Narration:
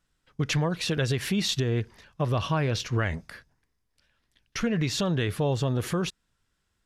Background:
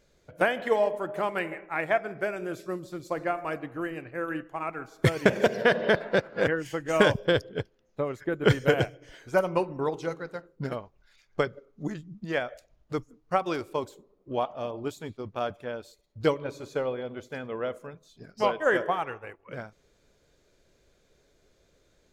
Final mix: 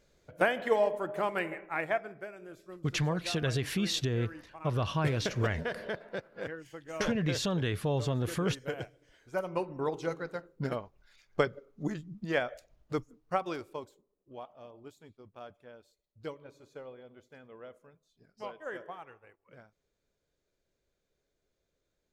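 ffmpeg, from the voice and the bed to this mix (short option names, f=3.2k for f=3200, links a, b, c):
-filter_complex "[0:a]adelay=2450,volume=-4.5dB[a];[1:a]volume=10.5dB,afade=t=out:st=1.7:d=0.57:silence=0.266073,afade=t=in:st=9.18:d=1.05:silence=0.223872,afade=t=out:st=12.8:d=1.24:silence=0.16788[b];[a][b]amix=inputs=2:normalize=0"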